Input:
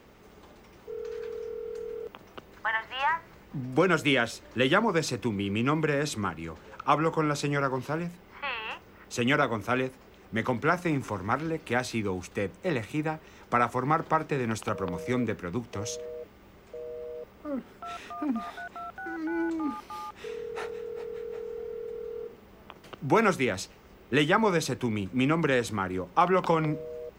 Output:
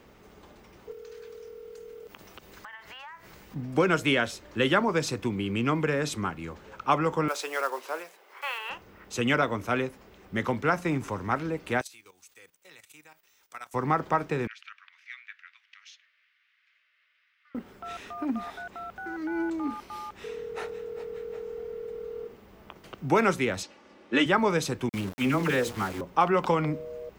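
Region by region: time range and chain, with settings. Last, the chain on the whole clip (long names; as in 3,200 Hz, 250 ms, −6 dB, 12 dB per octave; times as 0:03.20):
0:00.91–0:03.56: high-shelf EQ 2,900 Hz +10 dB + downward compressor 10 to 1, threshold −41 dBFS
0:07.28–0:08.70: one scale factor per block 5 bits + high-pass filter 450 Hz 24 dB per octave
0:11.81–0:13.74: first-order pre-emphasis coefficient 0.97 + notch filter 210 Hz, Q 5.9 + output level in coarse steps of 13 dB
0:14.47–0:17.55: Butterworth high-pass 1,700 Hz + high-frequency loss of the air 290 metres
0:23.63–0:24.26: band-pass filter 210–6,600 Hz + comb filter 3.5 ms, depth 61%
0:24.89–0:26.01: mains-hum notches 60/120/180/240/300/360/420/480/540 Hz + all-pass dispersion lows, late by 47 ms, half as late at 1,100 Hz + centre clipping without the shift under −36 dBFS
whole clip: no processing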